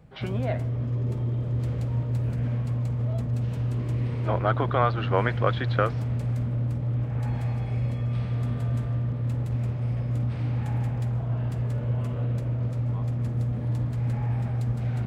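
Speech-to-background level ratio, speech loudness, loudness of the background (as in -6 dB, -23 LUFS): -0.5 dB, -28.5 LUFS, -28.0 LUFS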